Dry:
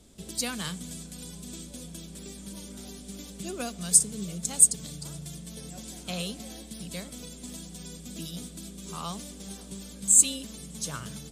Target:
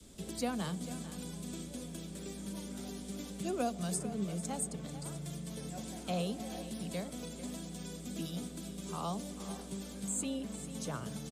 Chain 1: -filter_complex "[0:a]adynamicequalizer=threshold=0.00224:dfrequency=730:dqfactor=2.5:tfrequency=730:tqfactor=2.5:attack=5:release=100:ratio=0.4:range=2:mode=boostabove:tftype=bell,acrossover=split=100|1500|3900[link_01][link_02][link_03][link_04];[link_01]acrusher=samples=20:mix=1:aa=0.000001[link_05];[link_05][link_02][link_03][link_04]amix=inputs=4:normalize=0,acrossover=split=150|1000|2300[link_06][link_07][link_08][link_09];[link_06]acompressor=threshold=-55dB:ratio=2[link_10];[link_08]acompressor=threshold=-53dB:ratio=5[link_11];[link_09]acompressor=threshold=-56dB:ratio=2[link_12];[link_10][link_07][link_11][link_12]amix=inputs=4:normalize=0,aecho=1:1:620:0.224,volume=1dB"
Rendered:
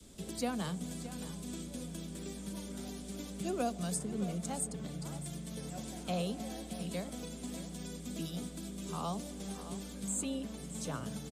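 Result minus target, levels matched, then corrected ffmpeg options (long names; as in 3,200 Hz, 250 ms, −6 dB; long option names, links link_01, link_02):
echo 177 ms late
-filter_complex "[0:a]adynamicequalizer=threshold=0.00224:dfrequency=730:dqfactor=2.5:tfrequency=730:tqfactor=2.5:attack=5:release=100:ratio=0.4:range=2:mode=boostabove:tftype=bell,acrossover=split=100|1500|3900[link_01][link_02][link_03][link_04];[link_01]acrusher=samples=20:mix=1:aa=0.000001[link_05];[link_05][link_02][link_03][link_04]amix=inputs=4:normalize=0,acrossover=split=150|1000|2300[link_06][link_07][link_08][link_09];[link_06]acompressor=threshold=-55dB:ratio=2[link_10];[link_08]acompressor=threshold=-53dB:ratio=5[link_11];[link_09]acompressor=threshold=-56dB:ratio=2[link_12];[link_10][link_07][link_11][link_12]amix=inputs=4:normalize=0,aecho=1:1:443:0.224,volume=1dB"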